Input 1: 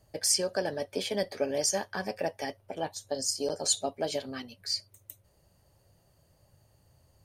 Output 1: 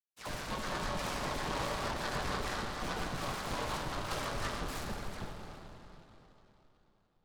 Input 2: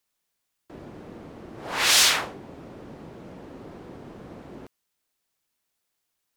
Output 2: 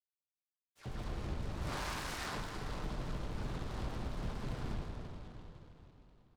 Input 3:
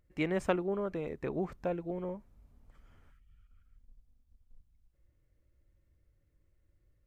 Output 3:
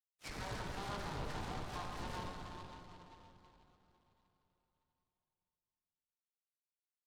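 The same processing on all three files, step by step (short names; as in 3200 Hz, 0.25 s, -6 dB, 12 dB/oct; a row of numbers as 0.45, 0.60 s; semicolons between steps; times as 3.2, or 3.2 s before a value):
minimum comb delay 6.7 ms; HPF 950 Hz 24 dB/oct; gate with hold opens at -46 dBFS; compressor 12:1, threshold -37 dBFS; Schmitt trigger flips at -47.5 dBFS; air absorption 210 m; dispersion lows, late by 0.121 s, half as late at 2100 Hz; downsampling 11025 Hz; plate-style reverb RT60 3.7 s, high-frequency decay 0.55×, DRR -1 dB; noise-modulated delay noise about 2400 Hz, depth 0.066 ms; gain +9 dB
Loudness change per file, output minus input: -6.5, -23.0, -9.5 LU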